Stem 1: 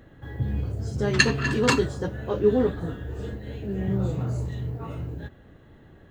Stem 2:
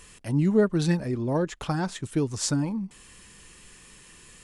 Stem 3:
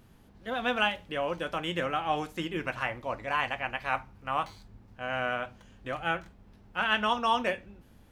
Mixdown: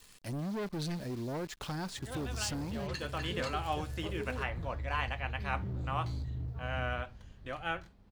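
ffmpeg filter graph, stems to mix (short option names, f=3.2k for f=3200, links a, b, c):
-filter_complex "[0:a]alimiter=limit=-13dB:level=0:latency=1:release=362,asubboost=boost=10.5:cutoff=90,adelay=1750,volume=-13.5dB[a];[1:a]acrusher=bits=8:dc=4:mix=0:aa=0.000001,volume=-6dB,asplit=2[b][c];[2:a]adelay=1600,volume=-6dB[d];[c]apad=whole_len=428287[e];[d][e]sidechaincompress=threshold=-41dB:ratio=8:attack=16:release=390[f];[a][b]amix=inputs=2:normalize=0,asoftclip=type=hard:threshold=-31dB,acompressor=threshold=-37dB:ratio=2,volume=0dB[g];[f][g]amix=inputs=2:normalize=0,equalizer=f=4.4k:t=o:w=0.62:g=6"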